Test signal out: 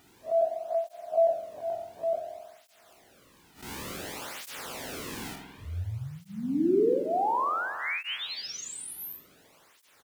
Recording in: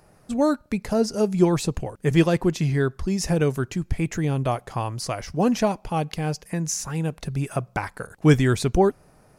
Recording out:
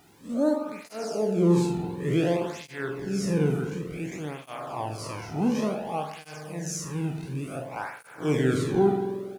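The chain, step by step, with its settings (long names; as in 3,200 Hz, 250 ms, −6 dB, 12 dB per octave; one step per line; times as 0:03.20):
spectrum smeared in time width 110 ms
background noise pink −56 dBFS
on a send: single-tap delay 81 ms −14.5 dB
on the sum: spring reverb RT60 1.7 s, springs 46 ms, chirp 25 ms, DRR 4 dB
through-zero flanger with one copy inverted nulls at 0.56 Hz, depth 1.9 ms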